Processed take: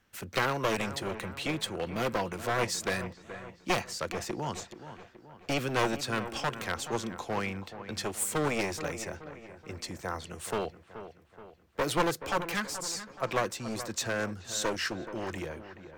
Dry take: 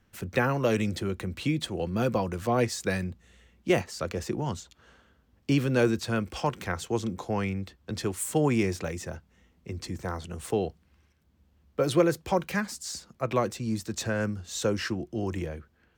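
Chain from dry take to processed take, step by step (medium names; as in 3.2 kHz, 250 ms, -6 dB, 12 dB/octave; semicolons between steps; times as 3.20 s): one-sided wavefolder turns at -24.5 dBFS; bass shelf 360 Hz -10.5 dB; on a send: feedback echo behind a low-pass 427 ms, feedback 50%, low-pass 2.3 kHz, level -12 dB; on the sum: trim +1.5 dB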